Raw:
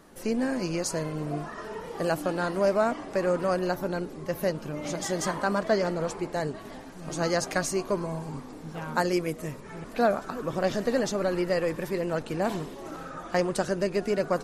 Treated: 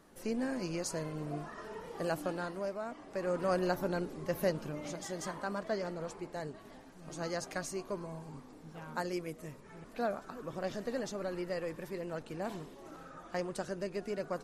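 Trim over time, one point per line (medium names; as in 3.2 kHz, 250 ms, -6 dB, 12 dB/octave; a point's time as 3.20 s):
2.29 s -7.5 dB
2.81 s -16.5 dB
3.56 s -4 dB
4.61 s -4 dB
5.02 s -11 dB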